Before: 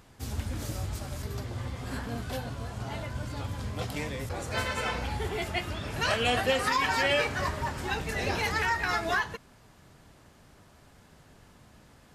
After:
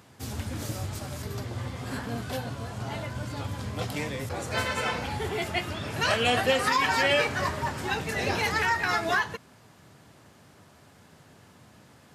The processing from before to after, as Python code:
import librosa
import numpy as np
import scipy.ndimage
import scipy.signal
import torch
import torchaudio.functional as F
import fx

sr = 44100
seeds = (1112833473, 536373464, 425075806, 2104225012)

y = scipy.signal.sosfilt(scipy.signal.butter(4, 85.0, 'highpass', fs=sr, output='sos'), x)
y = y * librosa.db_to_amplitude(2.5)